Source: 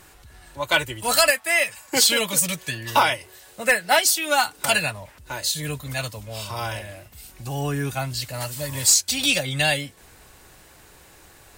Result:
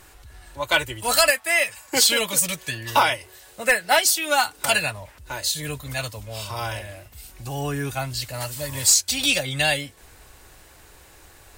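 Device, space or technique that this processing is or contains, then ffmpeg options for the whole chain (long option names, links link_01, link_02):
low shelf boost with a cut just above: -af "lowshelf=frequency=94:gain=5.5,equalizer=frequency=170:width_type=o:width=1.1:gain=-5"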